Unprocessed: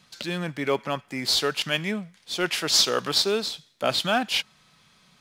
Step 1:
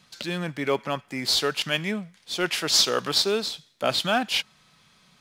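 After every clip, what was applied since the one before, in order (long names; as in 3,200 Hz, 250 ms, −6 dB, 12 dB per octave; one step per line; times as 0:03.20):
no processing that can be heard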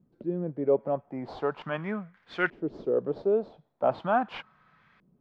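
auto-filter low-pass saw up 0.4 Hz 320–1,900 Hz
level −4 dB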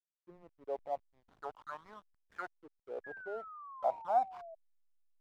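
envelope filter 760–1,900 Hz, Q 5.9, down, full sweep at −24 dBFS
slack as between gear wheels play −48.5 dBFS
sound drawn into the spectrogram fall, 0:03.04–0:04.55, 640–1,700 Hz −48 dBFS
level −1 dB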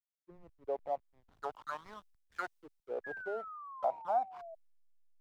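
downward compressor 3 to 1, threshold −42 dBFS, peak gain reduction 13 dB
multiband upward and downward expander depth 70%
level +6.5 dB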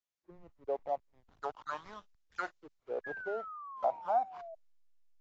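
level +1.5 dB
AAC 32 kbit/s 16,000 Hz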